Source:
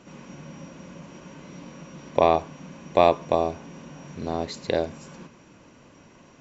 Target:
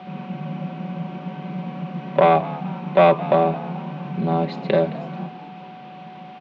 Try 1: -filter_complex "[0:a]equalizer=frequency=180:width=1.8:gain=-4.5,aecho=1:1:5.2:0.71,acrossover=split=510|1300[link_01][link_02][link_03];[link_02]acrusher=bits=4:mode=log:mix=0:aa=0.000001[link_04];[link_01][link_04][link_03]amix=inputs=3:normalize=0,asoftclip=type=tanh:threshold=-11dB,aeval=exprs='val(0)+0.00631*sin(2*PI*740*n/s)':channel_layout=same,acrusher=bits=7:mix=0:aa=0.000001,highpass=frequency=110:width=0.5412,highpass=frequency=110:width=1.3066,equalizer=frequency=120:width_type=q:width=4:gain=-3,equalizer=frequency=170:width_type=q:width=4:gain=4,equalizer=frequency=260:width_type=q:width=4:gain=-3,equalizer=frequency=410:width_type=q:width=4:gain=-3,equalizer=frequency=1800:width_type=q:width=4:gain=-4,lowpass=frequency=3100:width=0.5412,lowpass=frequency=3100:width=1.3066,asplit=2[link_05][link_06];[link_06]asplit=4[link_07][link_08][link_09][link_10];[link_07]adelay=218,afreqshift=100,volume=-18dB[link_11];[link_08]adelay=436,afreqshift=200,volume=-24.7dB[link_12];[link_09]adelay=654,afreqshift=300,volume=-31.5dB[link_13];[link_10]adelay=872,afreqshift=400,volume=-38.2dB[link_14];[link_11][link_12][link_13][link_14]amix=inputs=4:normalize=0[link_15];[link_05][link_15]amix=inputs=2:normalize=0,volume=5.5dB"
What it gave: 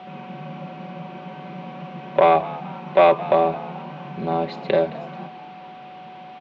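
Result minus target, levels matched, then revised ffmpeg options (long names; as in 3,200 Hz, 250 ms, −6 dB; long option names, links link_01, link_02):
250 Hz band −7.0 dB
-filter_complex "[0:a]equalizer=frequency=180:width=1.8:gain=4,aecho=1:1:5.2:0.71,acrossover=split=510|1300[link_01][link_02][link_03];[link_02]acrusher=bits=4:mode=log:mix=0:aa=0.000001[link_04];[link_01][link_04][link_03]amix=inputs=3:normalize=0,asoftclip=type=tanh:threshold=-11dB,aeval=exprs='val(0)+0.00631*sin(2*PI*740*n/s)':channel_layout=same,acrusher=bits=7:mix=0:aa=0.000001,highpass=frequency=110:width=0.5412,highpass=frequency=110:width=1.3066,equalizer=frequency=120:width_type=q:width=4:gain=-3,equalizer=frequency=170:width_type=q:width=4:gain=4,equalizer=frequency=260:width_type=q:width=4:gain=-3,equalizer=frequency=410:width_type=q:width=4:gain=-3,equalizer=frequency=1800:width_type=q:width=4:gain=-4,lowpass=frequency=3100:width=0.5412,lowpass=frequency=3100:width=1.3066,asplit=2[link_05][link_06];[link_06]asplit=4[link_07][link_08][link_09][link_10];[link_07]adelay=218,afreqshift=100,volume=-18dB[link_11];[link_08]adelay=436,afreqshift=200,volume=-24.7dB[link_12];[link_09]adelay=654,afreqshift=300,volume=-31.5dB[link_13];[link_10]adelay=872,afreqshift=400,volume=-38.2dB[link_14];[link_11][link_12][link_13][link_14]amix=inputs=4:normalize=0[link_15];[link_05][link_15]amix=inputs=2:normalize=0,volume=5.5dB"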